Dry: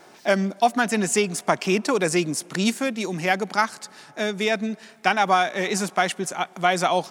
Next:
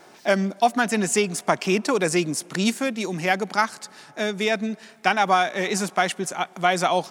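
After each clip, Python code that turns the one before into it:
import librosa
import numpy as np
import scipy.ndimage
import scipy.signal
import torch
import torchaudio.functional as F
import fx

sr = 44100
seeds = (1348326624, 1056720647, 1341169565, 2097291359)

y = x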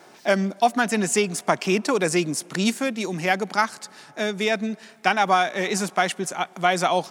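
y = scipy.signal.sosfilt(scipy.signal.butter(2, 58.0, 'highpass', fs=sr, output='sos'), x)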